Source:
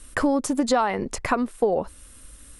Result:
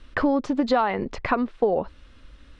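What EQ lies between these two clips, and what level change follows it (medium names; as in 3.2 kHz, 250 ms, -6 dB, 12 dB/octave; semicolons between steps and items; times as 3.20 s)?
low-pass 4.2 kHz 24 dB/octave; 0.0 dB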